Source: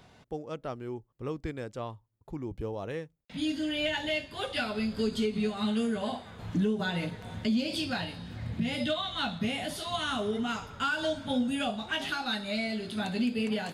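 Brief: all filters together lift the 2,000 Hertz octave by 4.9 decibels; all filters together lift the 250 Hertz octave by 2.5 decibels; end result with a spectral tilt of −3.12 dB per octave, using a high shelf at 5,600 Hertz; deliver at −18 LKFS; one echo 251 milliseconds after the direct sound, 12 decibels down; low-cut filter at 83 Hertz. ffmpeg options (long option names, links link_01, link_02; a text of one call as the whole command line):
ffmpeg -i in.wav -af "highpass=83,equalizer=frequency=250:width_type=o:gain=3,equalizer=frequency=2000:width_type=o:gain=7.5,highshelf=frequency=5600:gain=-4,aecho=1:1:251:0.251,volume=11.5dB" out.wav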